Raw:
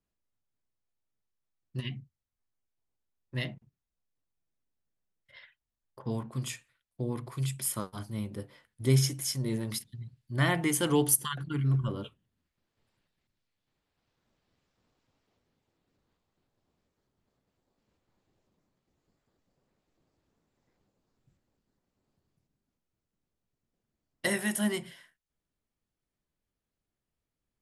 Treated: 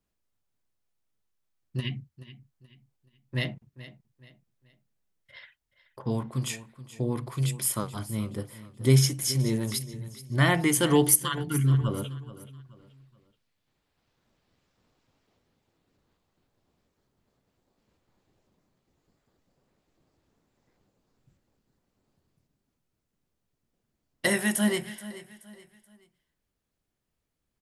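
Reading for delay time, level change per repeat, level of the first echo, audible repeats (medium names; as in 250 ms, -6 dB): 428 ms, -9.0 dB, -16.0 dB, 3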